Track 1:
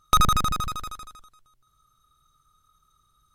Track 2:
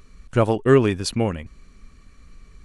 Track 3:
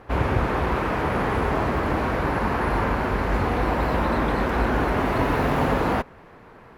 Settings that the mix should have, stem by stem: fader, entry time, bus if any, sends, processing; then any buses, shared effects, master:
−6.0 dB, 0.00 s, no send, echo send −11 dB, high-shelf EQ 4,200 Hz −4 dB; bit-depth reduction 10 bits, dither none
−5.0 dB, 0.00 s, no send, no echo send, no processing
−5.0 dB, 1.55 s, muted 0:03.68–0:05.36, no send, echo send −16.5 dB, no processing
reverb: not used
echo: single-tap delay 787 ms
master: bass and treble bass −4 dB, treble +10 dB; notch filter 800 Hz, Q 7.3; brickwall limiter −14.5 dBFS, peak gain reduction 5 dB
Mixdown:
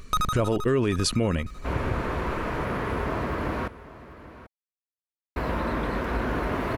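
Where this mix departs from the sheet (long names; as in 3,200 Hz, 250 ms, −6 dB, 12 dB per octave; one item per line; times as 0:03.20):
stem 2 −5.0 dB → +5.5 dB
master: missing bass and treble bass −4 dB, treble +10 dB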